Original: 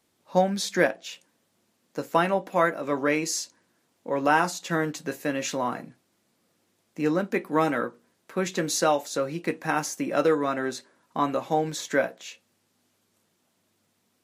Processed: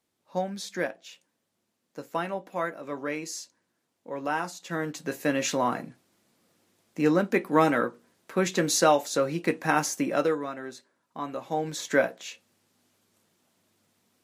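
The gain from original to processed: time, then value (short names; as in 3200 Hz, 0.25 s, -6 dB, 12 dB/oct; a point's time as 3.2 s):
4.57 s -8 dB
5.27 s +2 dB
10.02 s +2 dB
10.55 s -9.5 dB
11.22 s -9.5 dB
11.95 s +1 dB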